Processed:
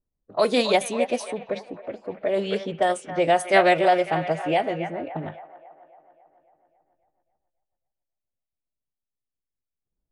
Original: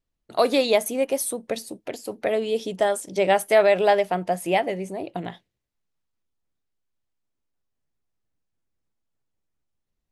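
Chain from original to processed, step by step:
delay with a band-pass on its return 274 ms, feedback 60%, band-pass 1,500 Hz, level −8.5 dB
phase-vocoder pitch shift with formants kept −2 semitones
low-pass that shuts in the quiet parts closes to 780 Hz, open at −17 dBFS

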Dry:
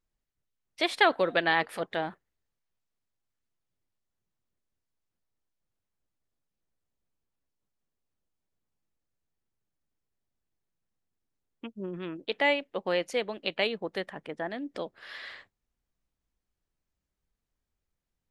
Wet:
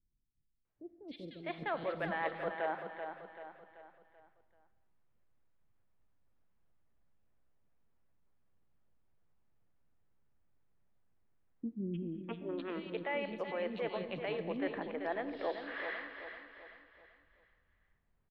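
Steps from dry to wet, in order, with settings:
reversed playback
downward compressor 5 to 1, threshold −35 dBFS, peak gain reduction 17 dB
reversed playback
high-frequency loss of the air 390 metres
on a send: repeating echo 385 ms, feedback 41%, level −8.5 dB
on the sum: speech leveller within 4 dB 2 s
three-band delay without the direct sound lows, highs, mids 300/650 ms, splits 330/3,400 Hz
reverb whose tail is shaped and stops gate 280 ms flat, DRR 12 dB
level +4 dB

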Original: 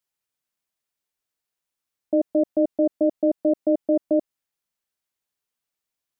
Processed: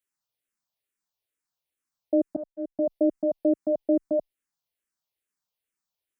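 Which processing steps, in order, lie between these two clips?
0:02.36–0:02.79: downward expander −10 dBFS
frequency shifter mixed with the dry sound −2.3 Hz

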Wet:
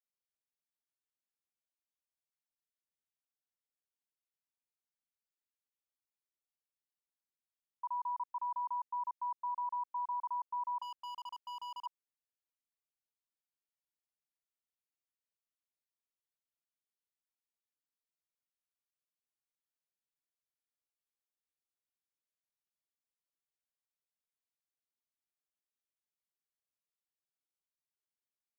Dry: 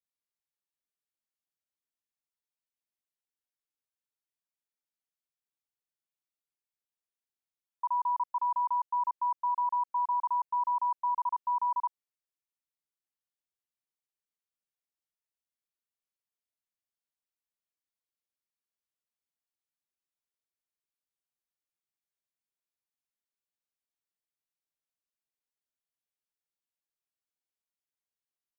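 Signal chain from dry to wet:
0:10.82–0:11.86: hard clipping −34.5 dBFS, distortion −11 dB
level −8 dB

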